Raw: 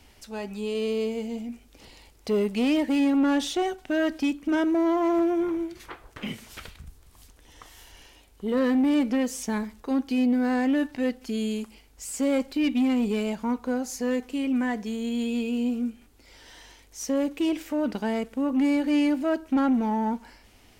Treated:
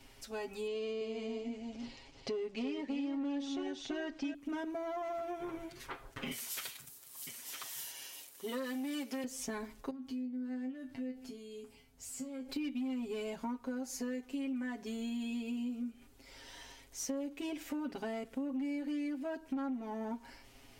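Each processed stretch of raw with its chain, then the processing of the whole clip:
0:00.67–0:04.34: low-pass filter 6,700 Hz 24 dB per octave + single-tap delay 336 ms −6 dB
0:06.31–0:09.24: high-pass filter 87 Hz + RIAA equalisation recording + single-tap delay 958 ms −7.5 dB
0:09.90–0:12.49: parametric band 110 Hz +8 dB 2.4 octaves + downward compressor, threshold −32 dBFS + tuned comb filter 85 Hz, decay 0.2 s, mix 90%
whole clip: comb filter 7.4 ms, depth 94%; downward compressor 6 to 1, threshold −31 dBFS; level −5.5 dB

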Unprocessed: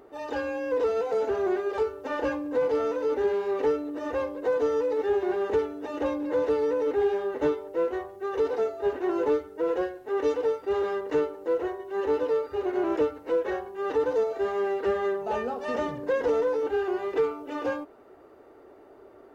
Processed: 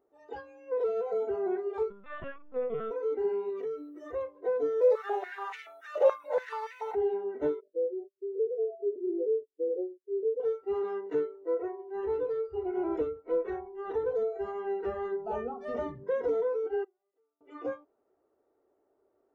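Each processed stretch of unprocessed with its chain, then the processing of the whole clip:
0:01.90–0:02.91: spectral tilt +3 dB per octave + upward compression, threshold −35 dBFS + linear-prediction vocoder at 8 kHz pitch kept
0:03.49–0:04.13: high-shelf EQ 4,200 Hz +6 dB + notch filter 810 Hz, Q 5.4 + downward compressor 4 to 1, threshold −27 dBFS
0:04.81–0:06.95: high-shelf EQ 2,700 Hz +12 dB + high-pass on a step sequencer 7 Hz 550–2,200 Hz
0:07.60–0:10.40: expanding power law on the bin magnitudes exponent 1.8 + noise gate −39 dBFS, range −30 dB + Butterworth low-pass 690 Hz 96 dB per octave
0:11.94–0:16.04: low-shelf EQ 110 Hz +11 dB + mains-hum notches 50/100/150/200/250/300/350/400/450 Hz
0:16.84–0:17.41: resonant band-pass 250 Hz, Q 1.2 + first difference + comb filter 1.5 ms, depth 35%
whole clip: parametric band 540 Hz +5 dB 2.2 octaves; noise reduction from a noise print of the clip's start 17 dB; high-shelf EQ 2,800 Hz −8.5 dB; level −8.5 dB

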